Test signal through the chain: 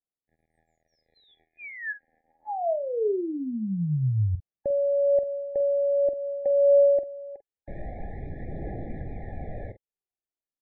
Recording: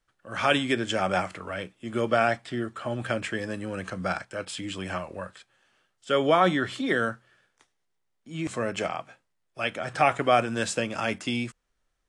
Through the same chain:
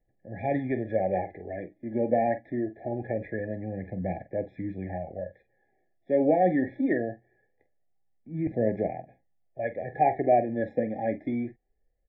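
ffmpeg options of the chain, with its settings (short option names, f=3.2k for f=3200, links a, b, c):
-filter_complex "[0:a]asplit=2[a][b];[b]adelay=46,volume=-12.5dB[c];[a][c]amix=inputs=2:normalize=0,aphaser=in_gain=1:out_gain=1:delay=4:decay=0.43:speed=0.23:type=triangular,lowpass=f=1.5k:w=0.5412,lowpass=f=1.5k:w=1.3066,afftfilt=real='re*eq(mod(floor(b*sr/1024/830),2),0)':imag='im*eq(mod(floor(b*sr/1024/830),2),0)':win_size=1024:overlap=0.75"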